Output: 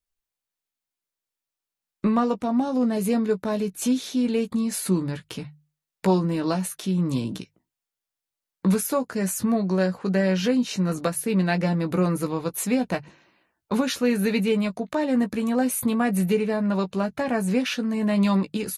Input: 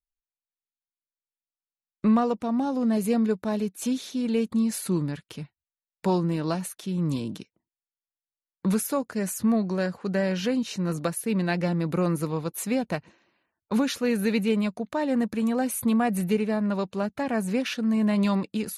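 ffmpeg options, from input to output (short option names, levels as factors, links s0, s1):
-filter_complex "[0:a]bandreject=f=50:t=h:w=6,bandreject=f=100:t=h:w=6,bandreject=f=150:t=h:w=6,asplit=2[s0][s1];[s1]acompressor=threshold=0.0158:ratio=6,volume=1.06[s2];[s0][s2]amix=inputs=2:normalize=0,asplit=2[s3][s4];[s4]adelay=16,volume=0.422[s5];[s3][s5]amix=inputs=2:normalize=0"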